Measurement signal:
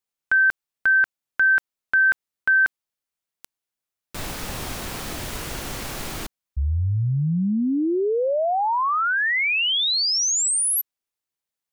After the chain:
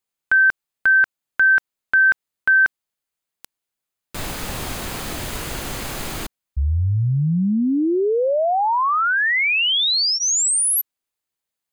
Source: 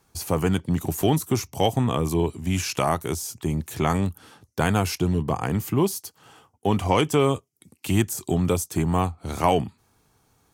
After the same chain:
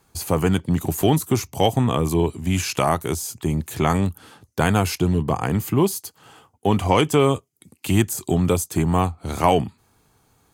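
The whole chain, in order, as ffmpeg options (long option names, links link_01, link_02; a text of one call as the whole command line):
ffmpeg -i in.wav -af "bandreject=frequency=5600:width=13,volume=3dB" out.wav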